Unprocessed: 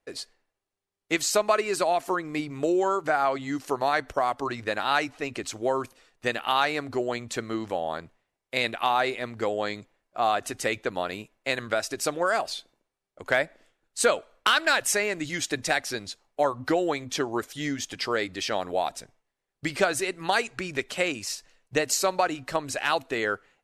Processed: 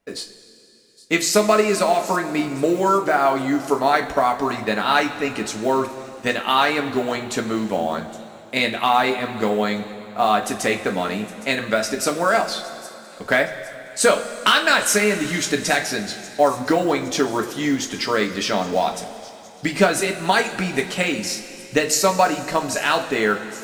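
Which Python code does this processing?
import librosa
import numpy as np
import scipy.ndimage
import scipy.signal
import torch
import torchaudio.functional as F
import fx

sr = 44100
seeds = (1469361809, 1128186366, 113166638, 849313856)

p1 = x + fx.echo_wet_highpass(x, sr, ms=814, feedback_pct=53, hz=5300.0, wet_db=-14.5, dry=0)
p2 = fx.quant_float(p1, sr, bits=4)
p3 = fx.peak_eq(p2, sr, hz=210.0, db=13.5, octaves=0.29)
p4 = fx.rev_double_slope(p3, sr, seeds[0], early_s=0.22, late_s=3.2, knee_db=-18, drr_db=2.0)
y = F.gain(torch.from_numpy(p4), 4.5).numpy()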